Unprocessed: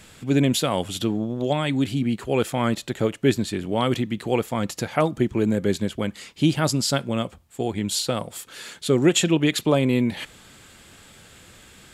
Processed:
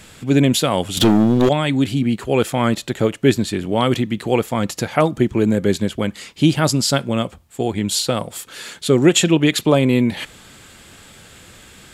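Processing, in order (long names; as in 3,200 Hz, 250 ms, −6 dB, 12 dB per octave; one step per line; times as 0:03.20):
0:00.97–0:01.49: leveller curve on the samples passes 3
level +5 dB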